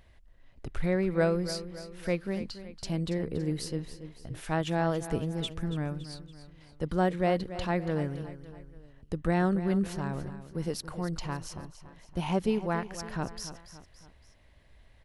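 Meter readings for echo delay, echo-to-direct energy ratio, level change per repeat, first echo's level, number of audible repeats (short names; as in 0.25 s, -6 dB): 0.282 s, -12.0 dB, -6.0 dB, -13.0 dB, 3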